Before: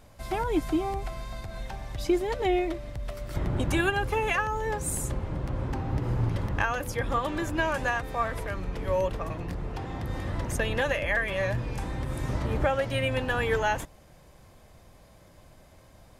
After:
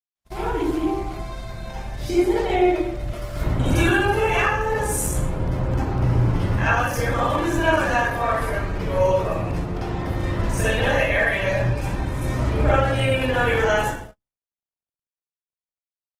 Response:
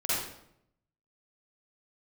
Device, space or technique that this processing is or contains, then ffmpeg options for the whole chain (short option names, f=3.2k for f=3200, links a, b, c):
speakerphone in a meeting room: -filter_complex "[1:a]atrim=start_sample=2205[a];[0:a][a]afir=irnorm=-1:irlink=0,asplit=2[b][c];[c]adelay=350,highpass=300,lowpass=3.4k,asoftclip=type=hard:threshold=-13.5dB,volume=-26dB[d];[b][d]amix=inputs=2:normalize=0,dynaudnorm=f=480:g=9:m=8.5dB,agate=range=-56dB:threshold=-29dB:ratio=16:detection=peak,volume=-5dB" -ar 48000 -c:a libopus -b:a 16k